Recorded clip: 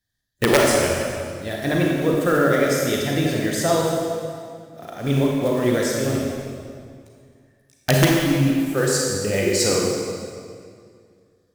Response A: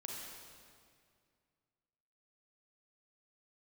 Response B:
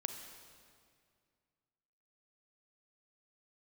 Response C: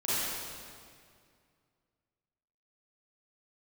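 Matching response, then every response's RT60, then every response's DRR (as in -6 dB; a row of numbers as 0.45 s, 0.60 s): A; 2.2 s, 2.2 s, 2.2 s; -2.0 dB, 6.0 dB, -12.0 dB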